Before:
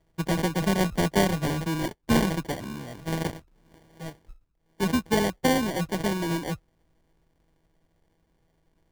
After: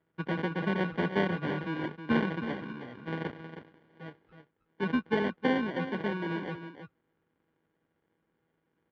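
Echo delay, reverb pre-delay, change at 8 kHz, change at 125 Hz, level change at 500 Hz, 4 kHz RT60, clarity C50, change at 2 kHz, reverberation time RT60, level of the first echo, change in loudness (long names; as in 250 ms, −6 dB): 317 ms, no reverb audible, below −30 dB, −7.5 dB, −4.5 dB, no reverb audible, no reverb audible, −2.0 dB, no reverb audible, −10.0 dB, −5.5 dB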